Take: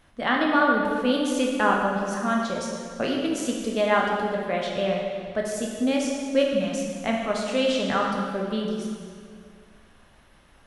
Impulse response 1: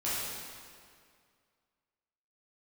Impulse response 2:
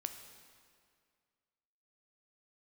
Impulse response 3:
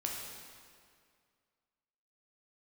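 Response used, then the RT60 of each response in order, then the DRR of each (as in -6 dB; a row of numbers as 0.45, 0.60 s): 3; 2.1, 2.1, 2.1 s; -10.5, 6.5, -1.5 dB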